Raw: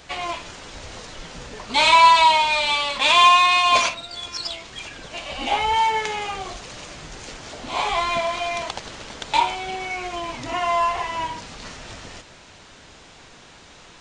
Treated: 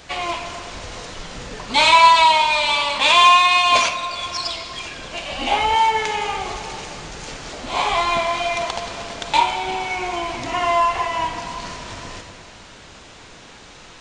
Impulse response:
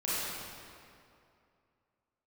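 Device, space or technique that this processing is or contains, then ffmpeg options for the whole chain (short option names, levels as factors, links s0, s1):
compressed reverb return: -filter_complex "[0:a]asplit=2[s0][s1];[1:a]atrim=start_sample=2205[s2];[s1][s2]afir=irnorm=-1:irlink=0,acompressor=threshold=0.2:ratio=6,volume=0.299[s3];[s0][s3]amix=inputs=2:normalize=0,volume=1.12"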